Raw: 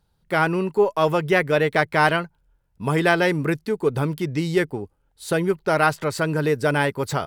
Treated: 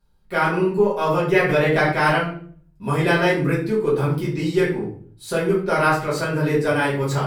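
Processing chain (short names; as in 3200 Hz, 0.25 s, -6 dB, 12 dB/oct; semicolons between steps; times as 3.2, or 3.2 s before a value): shoebox room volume 52 m³, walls mixed, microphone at 1.8 m; 1.49–1.92 fast leveller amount 50%; gain -8.5 dB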